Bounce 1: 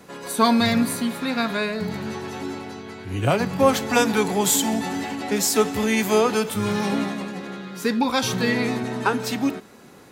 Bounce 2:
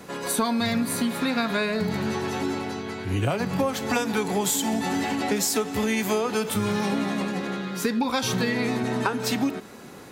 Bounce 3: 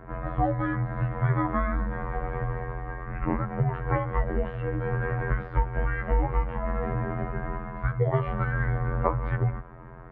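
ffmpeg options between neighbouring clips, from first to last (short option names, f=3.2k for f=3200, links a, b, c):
-af "acompressor=threshold=-25dB:ratio=10,volume=4dB"
-af "afftfilt=real='hypot(re,im)*cos(PI*b)':imag='0':win_size=2048:overlap=0.75,bandreject=f=50:t=h:w=6,bandreject=f=100:t=h:w=6,highpass=f=240:t=q:w=0.5412,highpass=f=240:t=q:w=1.307,lowpass=f=2.1k:t=q:w=0.5176,lowpass=f=2.1k:t=q:w=0.7071,lowpass=f=2.1k:t=q:w=1.932,afreqshift=-380,volume=4.5dB"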